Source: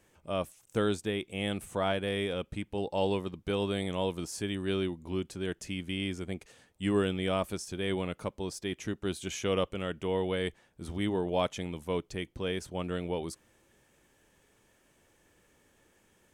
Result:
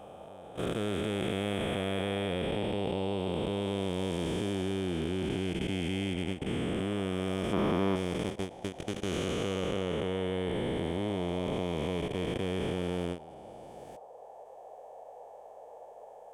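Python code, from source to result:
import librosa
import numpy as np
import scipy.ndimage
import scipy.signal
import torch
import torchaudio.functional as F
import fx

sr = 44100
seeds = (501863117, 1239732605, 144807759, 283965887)

y = fx.spec_blur(x, sr, span_ms=915.0)
y = fx.level_steps(y, sr, step_db=20)
y = fx.graphic_eq_10(y, sr, hz=(250, 1000, 8000), db=(7, 10, -11), at=(7.53, 7.96))
y = fx.dmg_noise_band(y, sr, seeds[0], low_hz=450.0, high_hz=840.0, level_db=-57.0)
y = fx.end_taper(y, sr, db_per_s=190.0)
y = y * 10.0 ** (8.0 / 20.0)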